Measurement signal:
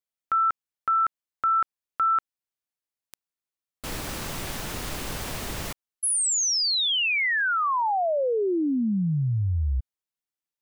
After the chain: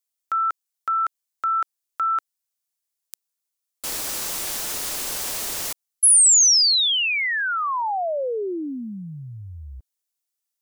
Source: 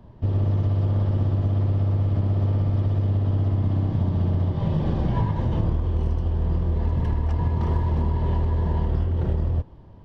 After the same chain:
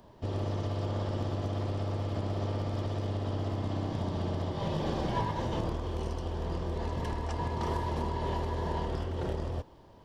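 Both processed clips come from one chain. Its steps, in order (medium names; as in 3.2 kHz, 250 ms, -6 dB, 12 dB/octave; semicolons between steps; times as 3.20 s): tone controls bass -13 dB, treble +11 dB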